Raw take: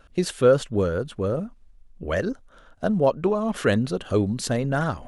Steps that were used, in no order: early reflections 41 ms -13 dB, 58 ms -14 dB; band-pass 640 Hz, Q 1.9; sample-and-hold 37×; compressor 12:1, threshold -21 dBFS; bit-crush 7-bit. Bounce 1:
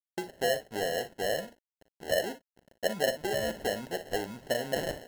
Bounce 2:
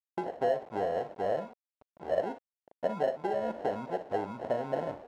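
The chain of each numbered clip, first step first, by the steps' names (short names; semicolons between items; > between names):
compressor > bit-crush > band-pass > sample-and-hold > early reflections; sample-and-hold > compressor > early reflections > bit-crush > band-pass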